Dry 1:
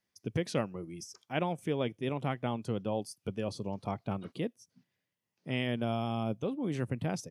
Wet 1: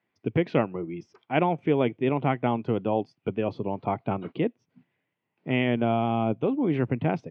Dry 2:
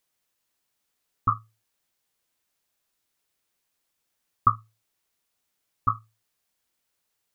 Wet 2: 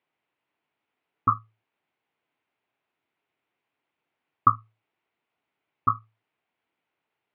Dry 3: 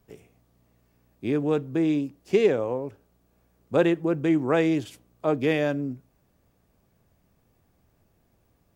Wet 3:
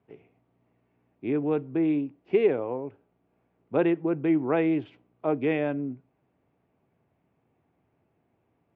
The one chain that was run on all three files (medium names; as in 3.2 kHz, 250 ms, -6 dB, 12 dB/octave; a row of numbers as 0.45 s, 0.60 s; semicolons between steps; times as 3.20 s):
cabinet simulation 150–2500 Hz, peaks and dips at 200 Hz -6 dB, 540 Hz -5 dB, 1.2 kHz -4 dB, 1.7 kHz -6 dB; normalise loudness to -27 LUFS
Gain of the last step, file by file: +11.5 dB, +6.0 dB, 0.0 dB